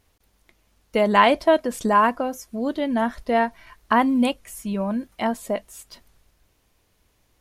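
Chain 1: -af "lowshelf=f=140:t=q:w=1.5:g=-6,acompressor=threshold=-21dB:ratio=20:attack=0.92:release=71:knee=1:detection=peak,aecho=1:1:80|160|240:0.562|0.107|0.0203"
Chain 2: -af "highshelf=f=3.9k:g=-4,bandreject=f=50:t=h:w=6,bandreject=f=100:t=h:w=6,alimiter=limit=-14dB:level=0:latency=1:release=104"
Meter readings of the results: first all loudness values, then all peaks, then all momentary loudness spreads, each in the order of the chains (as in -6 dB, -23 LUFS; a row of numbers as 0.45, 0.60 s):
-28.0, -26.0 LUFS; -14.0, -14.0 dBFS; 9, 7 LU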